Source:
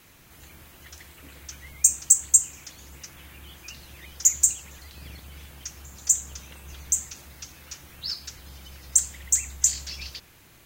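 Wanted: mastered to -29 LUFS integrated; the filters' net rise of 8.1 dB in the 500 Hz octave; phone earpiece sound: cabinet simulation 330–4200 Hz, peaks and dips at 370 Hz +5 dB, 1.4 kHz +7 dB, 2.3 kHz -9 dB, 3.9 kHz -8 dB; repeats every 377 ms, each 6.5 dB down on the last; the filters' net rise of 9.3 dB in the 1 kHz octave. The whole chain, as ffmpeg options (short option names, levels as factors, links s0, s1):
-af "highpass=330,equalizer=f=370:t=q:w=4:g=5,equalizer=f=1400:t=q:w=4:g=7,equalizer=f=2300:t=q:w=4:g=-9,equalizer=f=3900:t=q:w=4:g=-8,lowpass=f=4200:w=0.5412,lowpass=f=4200:w=1.3066,equalizer=f=500:t=o:g=7.5,equalizer=f=1000:t=o:g=7.5,aecho=1:1:377|754|1131|1508|1885|2262:0.473|0.222|0.105|0.0491|0.0231|0.0109,volume=4.47"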